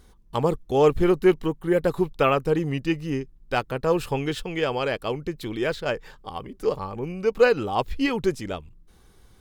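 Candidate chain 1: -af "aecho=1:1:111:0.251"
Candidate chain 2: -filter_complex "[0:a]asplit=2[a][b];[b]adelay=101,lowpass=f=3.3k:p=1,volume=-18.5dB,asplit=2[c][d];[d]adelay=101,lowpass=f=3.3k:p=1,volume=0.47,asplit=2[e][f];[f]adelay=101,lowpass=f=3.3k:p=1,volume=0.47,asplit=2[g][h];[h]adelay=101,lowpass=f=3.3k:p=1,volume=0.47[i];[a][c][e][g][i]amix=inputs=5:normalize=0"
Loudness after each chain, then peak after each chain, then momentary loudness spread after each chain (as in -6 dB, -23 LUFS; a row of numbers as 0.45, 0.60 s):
-24.5, -24.5 LUFS; -5.0, -5.0 dBFS; 12, 12 LU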